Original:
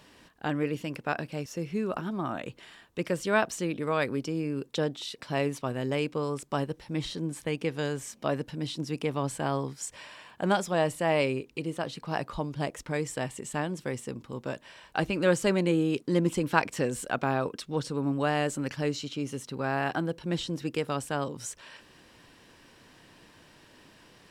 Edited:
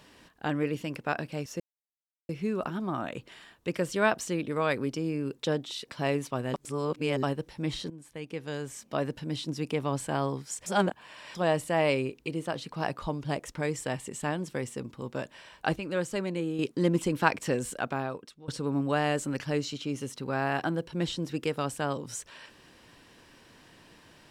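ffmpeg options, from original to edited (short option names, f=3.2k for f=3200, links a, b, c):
-filter_complex "[0:a]asplit=10[a][b][c][d][e][f][g][h][i][j];[a]atrim=end=1.6,asetpts=PTS-STARTPTS,afade=t=out:st=1.596:d=0.004:c=hsin,apad=pad_dur=0.69[k];[b]atrim=start=1.6:end=5.852,asetpts=PTS-STARTPTS,afade=t=in:d=0.004:c=hsin[l];[c]atrim=start=5.848:end=6.542,asetpts=PTS-STARTPTS,areverse[m];[d]atrim=start=6.538:end=7.21,asetpts=PTS-STARTPTS,afade=t=out:st=0.668:d=0.004:c=hsin:silence=0.158489[n];[e]atrim=start=7.21:end=9.972,asetpts=PTS-STARTPTS,afade=t=in:d=1.25:silence=0.158489[o];[f]atrim=start=9.968:end=10.662,asetpts=PTS-STARTPTS,areverse[p];[g]atrim=start=10.658:end=15.072[q];[h]atrim=start=15.068:end=15.902,asetpts=PTS-STARTPTS,volume=-6.5dB[r];[i]atrim=start=15.898:end=17.79,asetpts=PTS-STARTPTS,afade=t=out:st=1.032:d=0.86:silence=0.0794328[s];[j]atrim=start=17.79,asetpts=PTS-STARTPTS,afade=t=in:d=0.004:c=hsin:silence=0.0794328[t];[k][l]concat=n=2:v=0:a=1[u];[u][m]acrossfade=d=0.004:c1=hsin:c2=hsin[v];[n][o]concat=n=2:v=0:a=1[w];[v][w]acrossfade=d=0.004:c1=hsin:c2=hsin[x];[x][p]acrossfade=d=0.004:c1=hsin:c2=hsin[y];[y][q]acrossfade=d=0.004:c1=hsin:c2=hsin[z];[z][r]acrossfade=d=0.004:c1=hsin:c2=hsin[aa];[s][t]concat=n=2:v=0:a=1[ab];[aa][ab]acrossfade=d=0.004:c1=hsin:c2=hsin"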